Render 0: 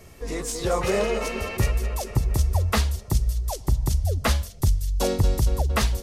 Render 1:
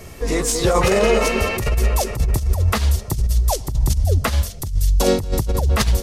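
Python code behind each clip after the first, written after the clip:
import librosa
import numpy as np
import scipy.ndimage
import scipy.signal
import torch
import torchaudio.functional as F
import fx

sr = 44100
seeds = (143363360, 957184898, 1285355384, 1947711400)

y = fx.over_compress(x, sr, threshold_db=-23.0, ratio=-0.5)
y = F.gain(torch.from_numpy(y), 7.5).numpy()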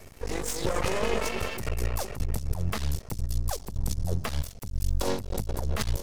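y = np.maximum(x, 0.0)
y = F.gain(torch.from_numpy(y), -7.5).numpy()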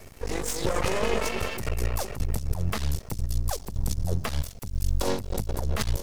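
y = fx.quant_dither(x, sr, seeds[0], bits=12, dither='triangular')
y = F.gain(torch.from_numpy(y), 1.5).numpy()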